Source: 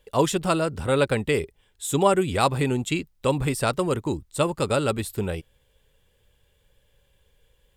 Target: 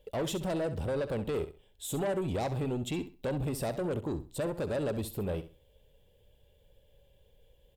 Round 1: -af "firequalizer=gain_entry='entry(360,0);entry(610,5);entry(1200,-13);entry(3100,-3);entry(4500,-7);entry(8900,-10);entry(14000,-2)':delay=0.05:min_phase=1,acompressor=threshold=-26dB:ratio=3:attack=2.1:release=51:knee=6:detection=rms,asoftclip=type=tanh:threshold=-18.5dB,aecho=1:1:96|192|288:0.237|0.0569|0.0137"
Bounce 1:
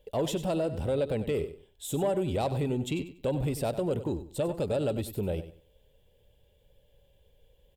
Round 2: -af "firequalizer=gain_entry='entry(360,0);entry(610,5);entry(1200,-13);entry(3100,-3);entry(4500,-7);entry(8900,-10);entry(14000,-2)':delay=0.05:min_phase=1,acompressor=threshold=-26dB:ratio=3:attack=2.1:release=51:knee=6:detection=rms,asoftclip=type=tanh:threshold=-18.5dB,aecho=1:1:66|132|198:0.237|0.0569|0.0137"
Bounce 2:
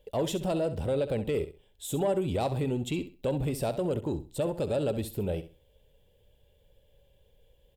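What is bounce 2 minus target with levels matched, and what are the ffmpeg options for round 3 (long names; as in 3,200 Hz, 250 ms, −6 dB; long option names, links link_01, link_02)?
soft clipping: distortion −13 dB
-af "firequalizer=gain_entry='entry(360,0);entry(610,5);entry(1200,-13);entry(3100,-3);entry(4500,-7);entry(8900,-10);entry(14000,-2)':delay=0.05:min_phase=1,acompressor=threshold=-26dB:ratio=3:attack=2.1:release=51:knee=6:detection=rms,asoftclip=type=tanh:threshold=-28dB,aecho=1:1:66|132|198:0.237|0.0569|0.0137"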